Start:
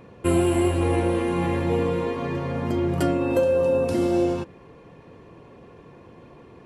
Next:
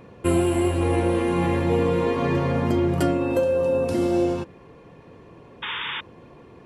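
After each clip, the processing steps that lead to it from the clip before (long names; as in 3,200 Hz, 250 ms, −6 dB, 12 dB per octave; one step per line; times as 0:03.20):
speech leveller 0.5 s
sound drawn into the spectrogram noise, 0:05.62–0:06.01, 830–3,700 Hz −31 dBFS
level +1 dB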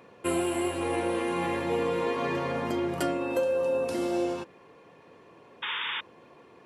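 high-pass filter 540 Hz 6 dB per octave
level −2 dB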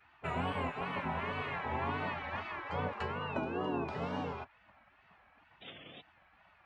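head-to-tape spacing loss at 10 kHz 41 dB
tape wow and flutter 130 cents
gate on every frequency bin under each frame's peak −15 dB weak
level +5.5 dB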